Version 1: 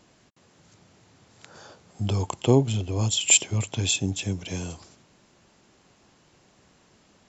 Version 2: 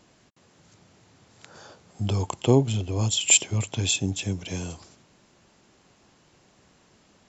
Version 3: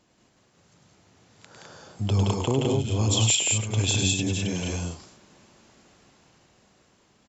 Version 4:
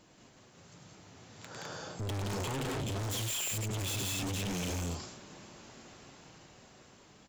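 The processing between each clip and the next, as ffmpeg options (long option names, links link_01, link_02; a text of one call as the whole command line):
ffmpeg -i in.wav -af anull out.wav
ffmpeg -i in.wav -filter_complex "[0:a]alimiter=limit=-14.5dB:level=0:latency=1:release=473,dynaudnorm=framelen=240:gausssize=13:maxgain=7dB,asplit=2[link_01][link_02];[link_02]aecho=0:1:102|172|207:0.562|0.794|0.708[link_03];[link_01][link_03]amix=inputs=2:normalize=0,volume=-6.5dB" out.wav
ffmpeg -i in.wav -filter_complex "[0:a]asplit=2[link_01][link_02];[link_02]aeval=exprs='0.335*sin(PI/2*7.94*val(0)/0.335)':channel_layout=same,volume=-11dB[link_03];[link_01][link_03]amix=inputs=2:normalize=0,flanger=delay=6.3:depth=1.8:regen=-63:speed=1.1:shape=sinusoidal,asoftclip=type=hard:threshold=-29dB,volume=-5dB" out.wav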